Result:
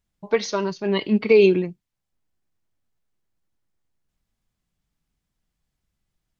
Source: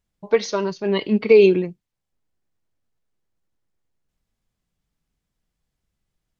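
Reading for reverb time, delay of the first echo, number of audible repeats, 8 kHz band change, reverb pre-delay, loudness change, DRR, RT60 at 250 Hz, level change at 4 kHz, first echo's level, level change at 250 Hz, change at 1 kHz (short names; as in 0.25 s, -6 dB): none, none, none, n/a, none, -2.0 dB, none, none, 0.0 dB, none, -0.5 dB, -0.5 dB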